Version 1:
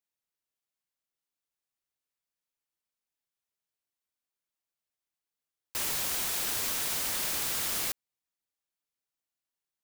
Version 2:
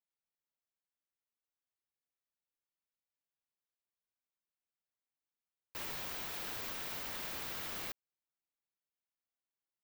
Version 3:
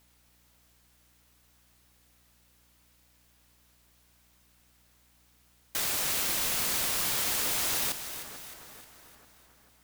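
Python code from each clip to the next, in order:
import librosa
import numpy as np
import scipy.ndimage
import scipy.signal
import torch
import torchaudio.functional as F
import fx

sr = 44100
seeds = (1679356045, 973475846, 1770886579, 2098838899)

y1 = fx.peak_eq(x, sr, hz=9600.0, db=-14.5, octaves=1.6)
y1 = F.gain(torch.from_numpy(y1), -6.0).numpy()
y2 = fx.fold_sine(y1, sr, drive_db=19, ceiling_db=-29.0)
y2 = fx.echo_split(y2, sr, split_hz=1900.0, low_ms=442, high_ms=308, feedback_pct=52, wet_db=-10.5)
y2 = fx.add_hum(y2, sr, base_hz=60, snr_db=33)
y2 = F.gain(torch.from_numpy(y2), 6.0).numpy()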